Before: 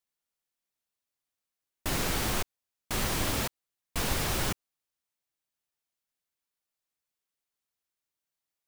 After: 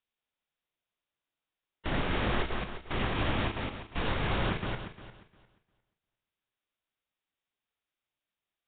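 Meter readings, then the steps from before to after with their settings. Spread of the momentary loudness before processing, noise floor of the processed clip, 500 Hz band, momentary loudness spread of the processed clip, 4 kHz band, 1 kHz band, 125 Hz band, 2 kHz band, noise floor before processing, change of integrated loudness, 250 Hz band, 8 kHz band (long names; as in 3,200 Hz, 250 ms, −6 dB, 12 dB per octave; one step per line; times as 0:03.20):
10 LU, below −85 dBFS, +2.0 dB, 9 LU, −3.0 dB, +1.5 dB, +2.0 dB, +1.0 dB, below −85 dBFS, −1.5 dB, +2.0 dB, below −40 dB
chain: feedback delay that plays each chunk backwards 176 ms, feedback 44%, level −3 dB
Nellymoser 16 kbit/s 8,000 Hz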